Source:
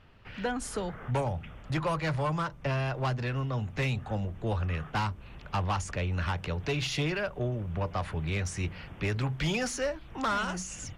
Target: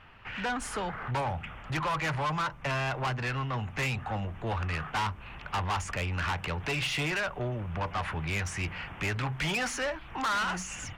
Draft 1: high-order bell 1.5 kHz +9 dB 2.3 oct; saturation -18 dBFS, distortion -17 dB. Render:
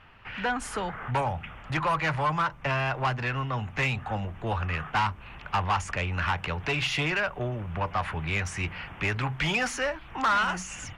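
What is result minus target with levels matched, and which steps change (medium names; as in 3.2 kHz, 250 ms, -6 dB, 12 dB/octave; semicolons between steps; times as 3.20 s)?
saturation: distortion -9 dB
change: saturation -26.5 dBFS, distortion -9 dB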